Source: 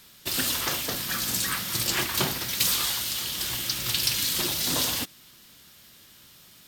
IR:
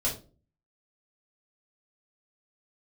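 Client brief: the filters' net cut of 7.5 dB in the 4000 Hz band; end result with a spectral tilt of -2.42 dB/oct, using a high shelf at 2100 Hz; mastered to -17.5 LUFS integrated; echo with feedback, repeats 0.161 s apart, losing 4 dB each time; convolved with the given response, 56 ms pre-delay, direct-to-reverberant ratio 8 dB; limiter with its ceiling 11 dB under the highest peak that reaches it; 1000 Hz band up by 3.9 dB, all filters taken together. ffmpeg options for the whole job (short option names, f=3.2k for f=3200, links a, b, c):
-filter_complex "[0:a]equalizer=f=1k:t=o:g=6.5,highshelf=f=2.1k:g=-5.5,equalizer=f=4k:t=o:g=-4.5,alimiter=limit=-22.5dB:level=0:latency=1,aecho=1:1:161|322|483|644|805|966|1127|1288|1449:0.631|0.398|0.25|0.158|0.0994|0.0626|0.0394|0.0249|0.0157,asplit=2[a][b];[1:a]atrim=start_sample=2205,adelay=56[c];[b][c]afir=irnorm=-1:irlink=0,volume=-15dB[d];[a][d]amix=inputs=2:normalize=0,volume=12dB"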